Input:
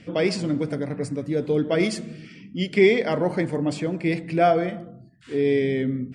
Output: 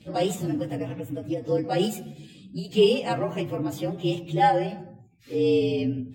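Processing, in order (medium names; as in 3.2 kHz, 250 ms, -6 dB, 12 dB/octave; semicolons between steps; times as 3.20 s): frequency axis rescaled in octaves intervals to 115%; endings held to a fixed fall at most 150 dB/s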